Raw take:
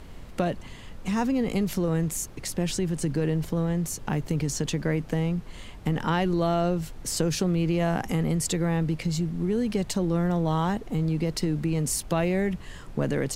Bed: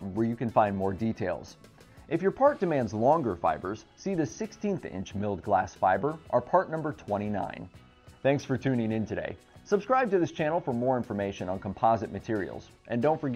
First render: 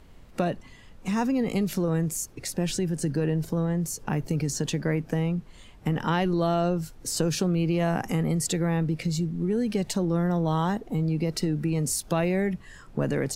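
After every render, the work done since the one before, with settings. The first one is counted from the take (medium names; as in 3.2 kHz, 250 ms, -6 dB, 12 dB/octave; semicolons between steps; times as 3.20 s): noise print and reduce 8 dB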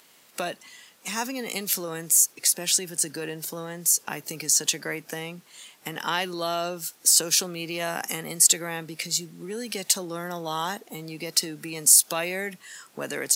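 high-pass 180 Hz 12 dB/octave; tilt EQ +4.5 dB/octave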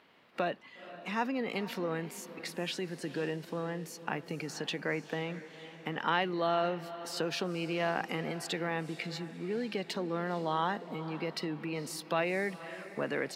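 distance through air 390 m; echo that smears into a reverb 487 ms, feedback 44%, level -14 dB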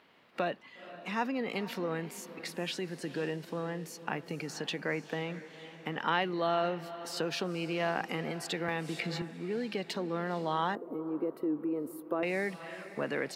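8.68–9.22 s: three bands compressed up and down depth 100%; 10.75–12.23 s: FFT filter 110 Hz 0 dB, 180 Hz -13 dB, 290 Hz +7 dB, 520 Hz +2 dB, 800 Hz -8 dB, 1.2 kHz -3 dB, 1.9 kHz -18 dB, 5.3 kHz -30 dB, 13 kHz 0 dB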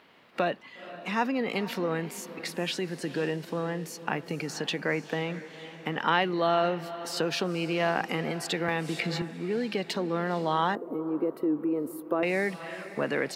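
trim +5 dB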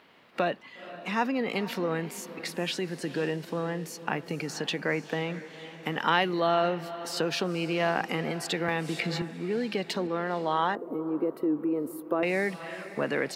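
5.83–6.40 s: treble shelf 5.9 kHz +8.5 dB; 10.07–10.79 s: tone controls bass -6 dB, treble -5 dB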